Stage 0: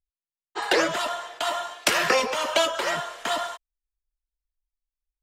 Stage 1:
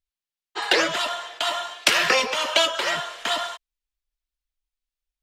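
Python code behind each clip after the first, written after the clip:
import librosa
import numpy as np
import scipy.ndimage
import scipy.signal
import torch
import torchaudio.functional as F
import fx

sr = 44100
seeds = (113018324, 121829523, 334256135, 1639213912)

y = fx.peak_eq(x, sr, hz=3300.0, db=7.5, octaves=1.9)
y = F.gain(torch.from_numpy(y), -1.5).numpy()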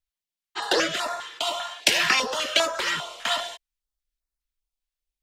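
y = fx.filter_held_notch(x, sr, hz=5.0, low_hz=370.0, high_hz=3100.0)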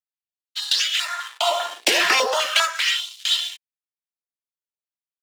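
y = fx.leveller(x, sr, passes=3)
y = fx.filter_lfo_highpass(y, sr, shape='sine', hz=0.39, low_hz=360.0, high_hz=3700.0, q=1.8)
y = F.gain(torch.from_numpy(y), -7.0).numpy()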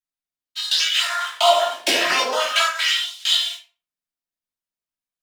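y = fx.rider(x, sr, range_db=10, speed_s=0.5)
y = fx.room_shoebox(y, sr, seeds[0], volume_m3=250.0, walls='furnished', distance_m=2.8)
y = F.gain(torch.from_numpy(y), -3.5).numpy()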